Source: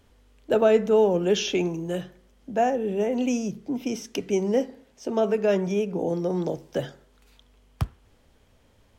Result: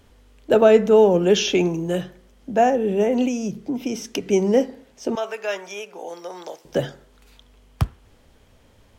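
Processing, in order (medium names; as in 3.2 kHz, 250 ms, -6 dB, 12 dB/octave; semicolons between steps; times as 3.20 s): 3.27–4.26 s: compression, threshold -27 dBFS, peak gain reduction 6 dB; 5.15–6.65 s: high-pass 1 kHz 12 dB/octave; trim +5.5 dB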